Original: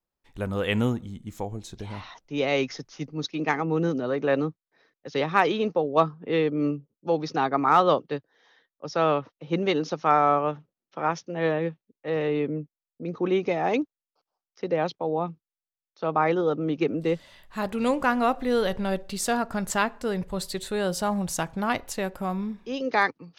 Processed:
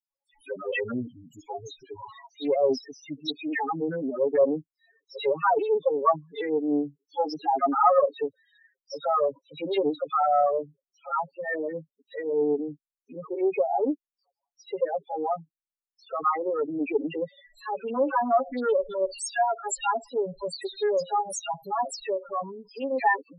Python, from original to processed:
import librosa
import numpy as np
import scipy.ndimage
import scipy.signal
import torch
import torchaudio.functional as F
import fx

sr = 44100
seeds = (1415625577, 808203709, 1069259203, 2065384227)

p1 = fx.bass_treble(x, sr, bass_db=-15, treble_db=6)
p2 = p1 + 0.72 * np.pad(p1, (int(7.2 * sr / 1000.0), 0))[:len(p1)]
p3 = fx.dispersion(p2, sr, late='lows', ms=100.0, hz=2900.0)
p4 = np.clip(p3, -10.0 ** (-22.0 / 20.0), 10.0 ** (-22.0 / 20.0))
p5 = p3 + F.gain(torch.from_numpy(p4), -9.5).numpy()
p6 = fx.spec_topn(p5, sr, count=4)
y = fx.doppler_dist(p6, sr, depth_ms=0.14)